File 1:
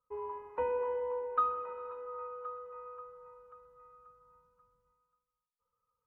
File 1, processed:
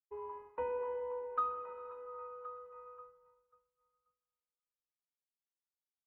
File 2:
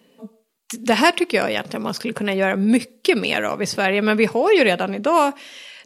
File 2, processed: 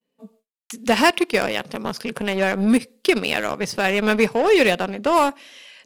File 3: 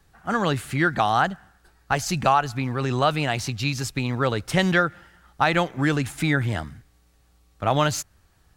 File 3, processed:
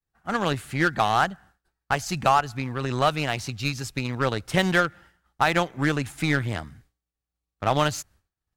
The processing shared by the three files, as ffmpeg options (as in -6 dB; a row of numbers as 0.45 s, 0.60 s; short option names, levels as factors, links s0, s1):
-filter_complex "[0:a]agate=range=0.0224:threshold=0.00562:ratio=3:detection=peak,asplit=2[s0][s1];[s1]acrusher=bits=2:mix=0:aa=0.5,volume=0.562[s2];[s0][s2]amix=inputs=2:normalize=0,volume=0.596"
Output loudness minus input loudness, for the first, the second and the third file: -4.0 LU, -1.0 LU, -1.5 LU